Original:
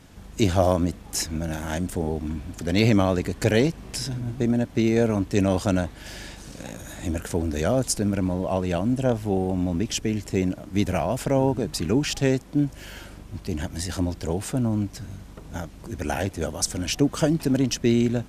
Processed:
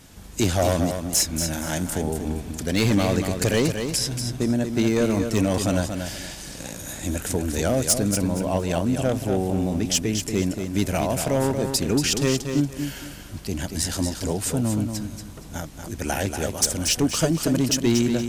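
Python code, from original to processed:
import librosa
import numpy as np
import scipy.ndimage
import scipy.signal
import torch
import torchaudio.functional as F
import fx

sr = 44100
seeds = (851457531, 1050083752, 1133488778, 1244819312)

p1 = fx.high_shelf(x, sr, hz=4200.0, db=10.0)
p2 = np.clip(p1, -10.0 ** (-13.5 / 20.0), 10.0 ** (-13.5 / 20.0))
y = p2 + fx.echo_feedback(p2, sr, ms=234, feedback_pct=26, wet_db=-7, dry=0)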